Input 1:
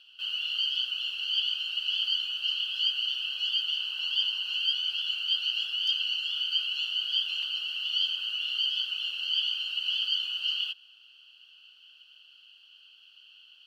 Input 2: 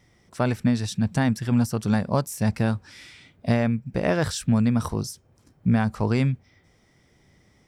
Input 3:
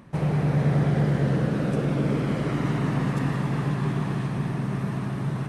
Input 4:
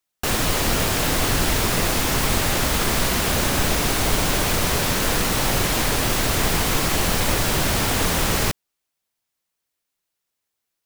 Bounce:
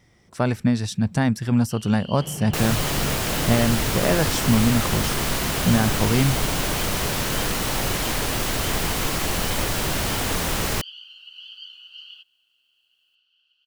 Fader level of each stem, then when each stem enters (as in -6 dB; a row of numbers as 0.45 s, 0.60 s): -12.5 dB, +1.5 dB, -10.0 dB, -3.5 dB; 1.50 s, 0.00 s, 2.05 s, 2.30 s